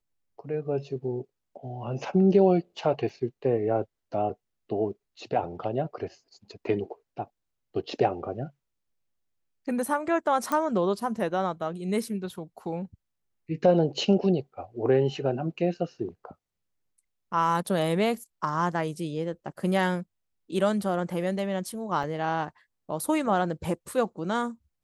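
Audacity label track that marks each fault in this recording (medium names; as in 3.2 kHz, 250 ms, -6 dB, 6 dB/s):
3.090000	3.090000	dropout 3.5 ms
10.520000	10.520000	pop -15 dBFS
22.030000	22.040000	dropout 5.7 ms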